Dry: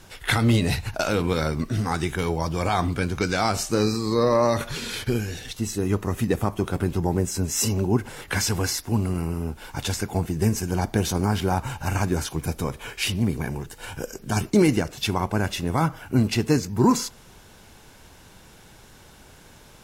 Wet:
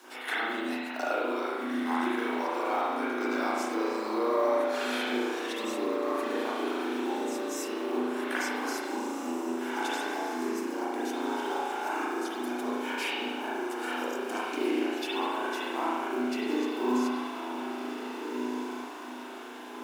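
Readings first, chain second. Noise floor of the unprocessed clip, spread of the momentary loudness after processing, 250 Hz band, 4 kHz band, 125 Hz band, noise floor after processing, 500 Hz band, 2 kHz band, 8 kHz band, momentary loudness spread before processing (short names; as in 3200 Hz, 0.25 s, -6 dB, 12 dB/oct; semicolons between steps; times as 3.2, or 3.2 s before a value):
-50 dBFS, 6 LU, -6.5 dB, -7.0 dB, under -35 dB, -41 dBFS, -4.5 dB, -2.0 dB, -13.5 dB, 9 LU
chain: compressor 8:1, threshold -31 dBFS, peak gain reduction 17 dB; rippled Chebyshev high-pass 240 Hz, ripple 6 dB; on a send: diffused feedback echo 1.655 s, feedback 44%, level -6 dB; on the sum: companded quantiser 6-bit; spring tank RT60 1.4 s, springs 36 ms, chirp 70 ms, DRR -9 dB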